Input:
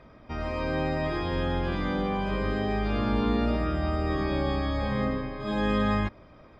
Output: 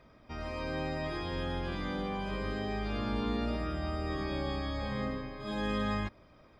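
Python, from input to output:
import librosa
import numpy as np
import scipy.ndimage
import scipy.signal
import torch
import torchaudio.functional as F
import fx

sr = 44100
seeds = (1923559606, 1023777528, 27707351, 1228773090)

y = fx.high_shelf(x, sr, hz=4200.0, db=10.0)
y = y * 10.0 ** (-7.5 / 20.0)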